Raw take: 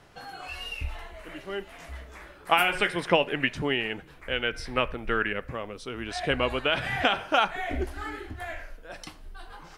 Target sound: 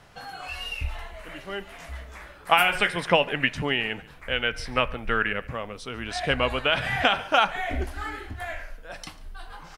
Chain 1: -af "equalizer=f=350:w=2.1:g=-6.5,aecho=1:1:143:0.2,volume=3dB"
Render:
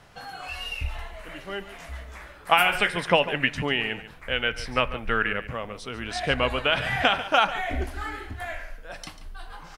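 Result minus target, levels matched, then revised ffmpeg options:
echo-to-direct +8 dB
-af "equalizer=f=350:w=2.1:g=-6.5,aecho=1:1:143:0.0794,volume=3dB"

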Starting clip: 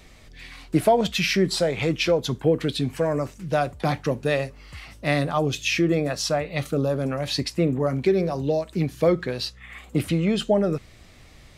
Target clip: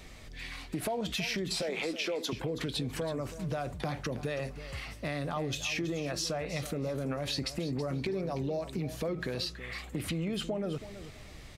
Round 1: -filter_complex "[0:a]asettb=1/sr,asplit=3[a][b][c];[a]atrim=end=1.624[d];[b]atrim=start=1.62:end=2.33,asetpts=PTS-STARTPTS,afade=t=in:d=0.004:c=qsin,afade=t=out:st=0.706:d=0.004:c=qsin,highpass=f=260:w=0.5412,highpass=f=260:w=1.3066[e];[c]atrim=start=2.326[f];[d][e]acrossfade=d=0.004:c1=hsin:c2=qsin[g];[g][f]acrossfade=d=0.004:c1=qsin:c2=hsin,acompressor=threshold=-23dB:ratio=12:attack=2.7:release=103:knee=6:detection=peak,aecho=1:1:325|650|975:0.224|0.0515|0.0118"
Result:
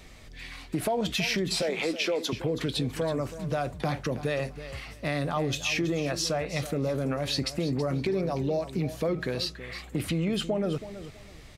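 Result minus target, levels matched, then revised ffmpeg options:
compressor: peak gain reduction -6 dB
-filter_complex "[0:a]asettb=1/sr,asplit=3[a][b][c];[a]atrim=end=1.624[d];[b]atrim=start=1.62:end=2.33,asetpts=PTS-STARTPTS,afade=t=in:d=0.004:c=qsin,afade=t=out:st=0.706:d=0.004:c=qsin,highpass=f=260:w=0.5412,highpass=f=260:w=1.3066[e];[c]atrim=start=2.326[f];[d][e]acrossfade=d=0.004:c1=hsin:c2=qsin[g];[g][f]acrossfade=d=0.004:c1=qsin:c2=hsin,acompressor=threshold=-29.5dB:ratio=12:attack=2.7:release=103:knee=6:detection=peak,aecho=1:1:325|650|975:0.224|0.0515|0.0118"

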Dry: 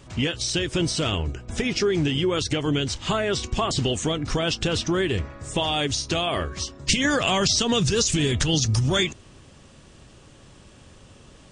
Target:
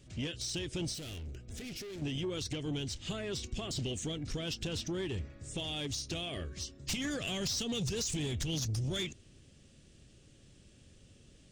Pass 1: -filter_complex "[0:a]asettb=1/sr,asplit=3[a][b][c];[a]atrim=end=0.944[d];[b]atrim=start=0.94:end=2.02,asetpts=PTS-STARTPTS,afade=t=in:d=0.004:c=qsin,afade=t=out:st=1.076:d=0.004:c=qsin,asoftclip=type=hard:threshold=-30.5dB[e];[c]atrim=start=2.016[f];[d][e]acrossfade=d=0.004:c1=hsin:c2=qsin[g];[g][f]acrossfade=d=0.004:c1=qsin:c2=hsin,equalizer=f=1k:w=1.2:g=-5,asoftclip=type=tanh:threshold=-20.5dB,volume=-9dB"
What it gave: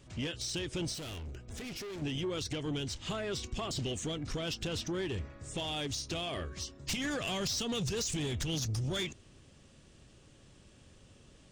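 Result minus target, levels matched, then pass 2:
1000 Hz band +5.0 dB
-filter_complex "[0:a]asettb=1/sr,asplit=3[a][b][c];[a]atrim=end=0.944[d];[b]atrim=start=0.94:end=2.02,asetpts=PTS-STARTPTS,afade=t=in:d=0.004:c=qsin,afade=t=out:st=1.076:d=0.004:c=qsin,asoftclip=type=hard:threshold=-30.5dB[e];[c]atrim=start=2.016[f];[d][e]acrossfade=d=0.004:c1=hsin:c2=qsin[g];[g][f]acrossfade=d=0.004:c1=qsin:c2=hsin,equalizer=f=1k:w=1.2:g=-16,asoftclip=type=tanh:threshold=-20.5dB,volume=-9dB"

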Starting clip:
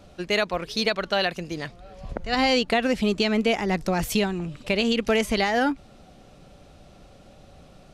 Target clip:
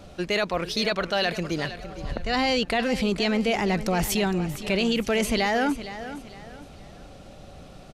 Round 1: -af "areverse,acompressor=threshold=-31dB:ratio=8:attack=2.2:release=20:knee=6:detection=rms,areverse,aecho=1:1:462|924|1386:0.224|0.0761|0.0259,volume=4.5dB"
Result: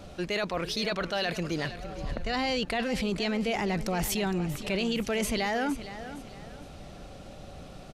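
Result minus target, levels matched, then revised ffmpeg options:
compressor: peak gain reduction +5.5 dB
-af "areverse,acompressor=threshold=-24.5dB:ratio=8:attack=2.2:release=20:knee=6:detection=rms,areverse,aecho=1:1:462|924|1386:0.224|0.0761|0.0259,volume=4.5dB"

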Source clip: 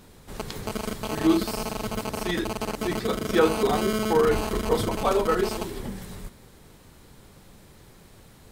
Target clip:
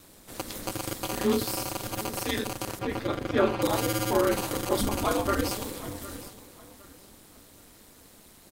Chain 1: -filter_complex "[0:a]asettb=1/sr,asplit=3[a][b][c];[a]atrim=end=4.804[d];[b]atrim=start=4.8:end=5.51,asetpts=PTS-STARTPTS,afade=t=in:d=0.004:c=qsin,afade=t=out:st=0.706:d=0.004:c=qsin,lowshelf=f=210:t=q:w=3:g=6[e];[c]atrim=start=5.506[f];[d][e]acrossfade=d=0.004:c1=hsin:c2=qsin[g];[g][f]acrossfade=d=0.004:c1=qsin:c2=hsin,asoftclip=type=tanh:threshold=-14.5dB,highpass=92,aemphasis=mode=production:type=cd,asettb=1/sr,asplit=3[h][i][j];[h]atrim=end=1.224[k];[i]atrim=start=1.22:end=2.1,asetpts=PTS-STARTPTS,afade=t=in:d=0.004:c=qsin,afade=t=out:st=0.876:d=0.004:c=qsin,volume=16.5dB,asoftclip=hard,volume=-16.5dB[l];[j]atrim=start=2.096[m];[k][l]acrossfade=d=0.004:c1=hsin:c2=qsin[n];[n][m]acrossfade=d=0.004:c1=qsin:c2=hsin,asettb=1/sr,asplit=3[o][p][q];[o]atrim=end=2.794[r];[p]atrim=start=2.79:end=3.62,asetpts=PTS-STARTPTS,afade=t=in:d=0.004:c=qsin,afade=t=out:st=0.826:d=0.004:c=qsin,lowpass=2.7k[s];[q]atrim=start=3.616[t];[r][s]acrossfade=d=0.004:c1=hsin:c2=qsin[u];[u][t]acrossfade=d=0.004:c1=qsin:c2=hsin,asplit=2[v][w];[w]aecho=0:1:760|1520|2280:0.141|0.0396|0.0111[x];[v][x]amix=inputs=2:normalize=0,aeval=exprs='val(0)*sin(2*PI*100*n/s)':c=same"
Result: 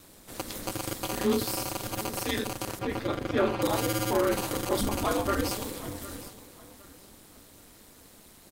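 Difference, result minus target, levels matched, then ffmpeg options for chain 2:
soft clip: distortion +16 dB
-filter_complex "[0:a]asettb=1/sr,asplit=3[a][b][c];[a]atrim=end=4.804[d];[b]atrim=start=4.8:end=5.51,asetpts=PTS-STARTPTS,afade=t=in:d=0.004:c=qsin,afade=t=out:st=0.706:d=0.004:c=qsin,lowshelf=f=210:t=q:w=3:g=6[e];[c]atrim=start=5.506[f];[d][e]acrossfade=d=0.004:c1=hsin:c2=qsin[g];[g][f]acrossfade=d=0.004:c1=qsin:c2=hsin,asoftclip=type=tanh:threshold=-4.5dB,highpass=92,aemphasis=mode=production:type=cd,asettb=1/sr,asplit=3[h][i][j];[h]atrim=end=1.224[k];[i]atrim=start=1.22:end=2.1,asetpts=PTS-STARTPTS,afade=t=in:d=0.004:c=qsin,afade=t=out:st=0.876:d=0.004:c=qsin,volume=16.5dB,asoftclip=hard,volume=-16.5dB[l];[j]atrim=start=2.096[m];[k][l]acrossfade=d=0.004:c1=hsin:c2=qsin[n];[n][m]acrossfade=d=0.004:c1=qsin:c2=hsin,asettb=1/sr,asplit=3[o][p][q];[o]atrim=end=2.794[r];[p]atrim=start=2.79:end=3.62,asetpts=PTS-STARTPTS,afade=t=in:d=0.004:c=qsin,afade=t=out:st=0.826:d=0.004:c=qsin,lowpass=2.7k[s];[q]atrim=start=3.616[t];[r][s]acrossfade=d=0.004:c1=hsin:c2=qsin[u];[u][t]acrossfade=d=0.004:c1=qsin:c2=hsin,asplit=2[v][w];[w]aecho=0:1:760|1520|2280:0.141|0.0396|0.0111[x];[v][x]amix=inputs=2:normalize=0,aeval=exprs='val(0)*sin(2*PI*100*n/s)':c=same"

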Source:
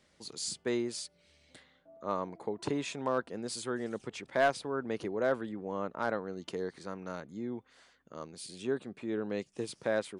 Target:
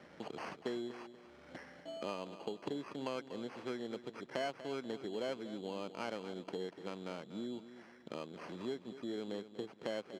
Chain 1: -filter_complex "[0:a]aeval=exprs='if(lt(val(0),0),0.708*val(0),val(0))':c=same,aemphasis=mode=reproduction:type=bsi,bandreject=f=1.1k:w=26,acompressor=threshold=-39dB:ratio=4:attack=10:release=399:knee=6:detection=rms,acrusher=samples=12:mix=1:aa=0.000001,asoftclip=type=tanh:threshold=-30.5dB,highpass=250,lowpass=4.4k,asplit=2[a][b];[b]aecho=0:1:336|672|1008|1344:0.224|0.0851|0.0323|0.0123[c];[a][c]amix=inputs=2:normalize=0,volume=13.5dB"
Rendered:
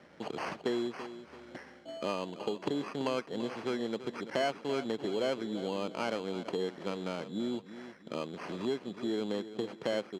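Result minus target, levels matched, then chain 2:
compressor: peak gain reduction -8.5 dB; echo 95 ms late
-filter_complex "[0:a]aeval=exprs='if(lt(val(0),0),0.708*val(0),val(0))':c=same,aemphasis=mode=reproduction:type=bsi,bandreject=f=1.1k:w=26,acompressor=threshold=-50dB:ratio=4:attack=10:release=399:knee=6:detection=rms,acrusher=samples=12:mix=1:aa=0.000001,asoftclip=type=tanh:threshold=-30.5dB,highpass=250,lowpass=4.4k,asplit=2[a][b];[b]aecho=0:1:241|482|723|964:0.224|0.0851|0.0323|0.0123[c];[a][c]amix=inputs=2:normalize=0,volume=13.5dB"

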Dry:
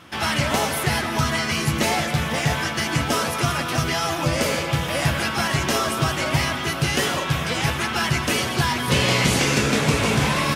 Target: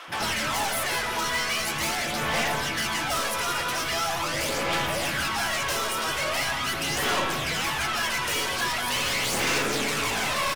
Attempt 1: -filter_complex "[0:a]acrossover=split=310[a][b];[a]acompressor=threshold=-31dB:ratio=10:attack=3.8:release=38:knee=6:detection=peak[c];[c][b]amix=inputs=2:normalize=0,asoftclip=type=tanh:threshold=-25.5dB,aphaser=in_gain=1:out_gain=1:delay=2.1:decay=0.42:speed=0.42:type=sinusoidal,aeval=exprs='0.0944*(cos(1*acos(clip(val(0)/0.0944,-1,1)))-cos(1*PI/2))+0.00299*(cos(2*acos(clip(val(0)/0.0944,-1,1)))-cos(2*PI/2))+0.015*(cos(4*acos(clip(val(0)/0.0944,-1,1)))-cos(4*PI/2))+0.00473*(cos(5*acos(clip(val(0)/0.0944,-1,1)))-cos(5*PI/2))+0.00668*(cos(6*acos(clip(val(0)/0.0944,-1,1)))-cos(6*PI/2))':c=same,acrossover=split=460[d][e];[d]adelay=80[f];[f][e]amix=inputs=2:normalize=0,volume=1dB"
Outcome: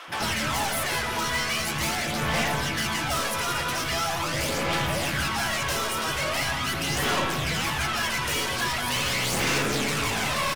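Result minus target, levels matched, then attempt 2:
compressor: peak gain reduction -8 dB
-filter_complex "[0:a]acrossover=split=310[a][b];[a]acompressor=threshold=-40dB:ratio=10:attack=3.8:release=38:knee=6:detection=peak[c];[c][b]amix=inputs=2:normalize=0,asoftclip=type=tanh:threshold=-25.5dB,aphaser=in_gain=1:out_gain=1:delay=2.1:decay=0.42:speed=0.42:type=sinusoidal,aeval=exprs='0.0944*(cos(1*acos(clip(val(0)/0.0944,-1,1)))-cos(1*PI/2))+0.00299*(cos(2*acos(clip(val(0)/0.0944,-1,1)))-cos(2*PI/2))+0.015*(cos(4*acos(clip(val(0)/0.0944,-1,1)))-cos(4*PI/2))+0.00473*(cos(5*acos(clip(val(0)/0.0944,-1,1)))-cos(5*PI/2))+0.00668*(cos(6*acos(clip(val(0)/0.0944,-1,1)))-cos(6*PI/2))':c=same,acrossover=split=460[d][e];[d]adelay=80[f];[f][e]amix=inputs=2:normalize=0,volume=1dB"

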